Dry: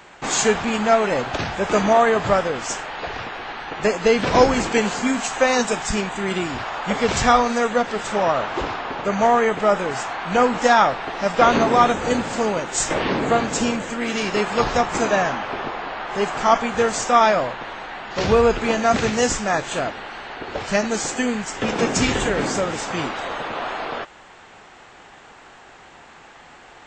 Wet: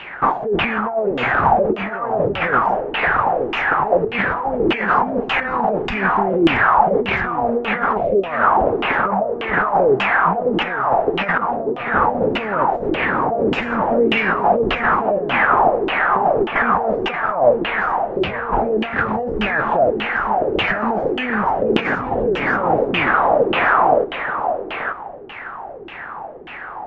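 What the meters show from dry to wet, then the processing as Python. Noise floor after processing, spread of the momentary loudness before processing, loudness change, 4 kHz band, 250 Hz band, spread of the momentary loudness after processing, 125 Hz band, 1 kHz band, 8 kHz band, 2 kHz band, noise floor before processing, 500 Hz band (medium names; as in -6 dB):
-32 dBFS, 12 LU, +2.5 dB, -1.0 dB, +1.0 dB, 7 LU, +1.0 dB, +4.0 dB, under -30 dB, +5.5 dB, -46 dBFS, +2.0 dB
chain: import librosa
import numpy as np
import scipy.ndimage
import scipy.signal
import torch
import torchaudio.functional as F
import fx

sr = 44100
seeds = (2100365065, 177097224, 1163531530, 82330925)

y = fx.spec_erase(x, sr, start_s=7.97, length_s=0.28, low_hz=740.0, high_hz=2000.0)
y = fx.over_compress(y, sr, threshold_db=-26.0, ratio=-1.0)
y = scipy.ndimage.gaussian_filter1d(y, 1.5, mode='constant')
y = y + 10.0 ** (-7.5 / 20.0) * np.pad(y, (int(880 * sr / 1000.0), 0))[:len(y)]
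y = fx.filter_lfo_lowpass(y, sr, shape='saw_down', hz=1.7, low_hz=330.0, high_hz=3000.0, q=6.4)
y = y * 10.0 ** (1.5 / 20.0)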